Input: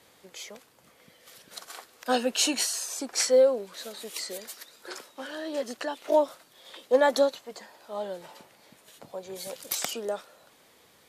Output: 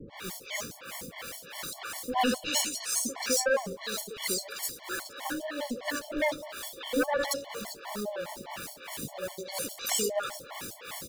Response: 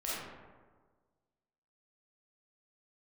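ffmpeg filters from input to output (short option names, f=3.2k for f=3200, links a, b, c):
-filter_complex "[0:a]aeval=exprs='val(0)+0.5*0.0133*sgn(val(0))':c=same,asplit=2[a][b];[b]aecho=0:1:96|192|288|384:0.2|0.0858|0.0369|0.0159[c];[a][c]amix=inputs=2:normalize=0,acrossover=split=510[d][e];[d]aeval=exprs='val(0)*(1-1/2+1/2*cos(2*PI*3*n/s))':c=same[f];[e]aeval=exprs='val(0)*(1-1/2-1/2*cos(2*PI*3*n/s))':c=same[g];[f][g]amix=inputs=2:normalize=0,asplit=2[h][i];[i]aeval=exprs='0.266*sin(PI/2*4.47*val(0)/0.266)':c=same,volume=-4dB[j];[h][j]amix=inputs=2:normalize=0,acrossover=split=490|4100[k][l][m];[l]adelay=70[n];[m]adelay=150[o];[k][n][o]amix=inputs=3:normalize=0,afftfilt=real='re*gt(sin(2*PI*4.9*pts/sr)*(1-2*mod(floor(b*sr/1024/580),2)),0)':imag='im*gt(sin(2*PI*4.9*pts/sr)*(1-2*mod(floor(b*sr/1024/580),2)),0)':win_size=1024:overlap=0.75,volume=-5.5dB"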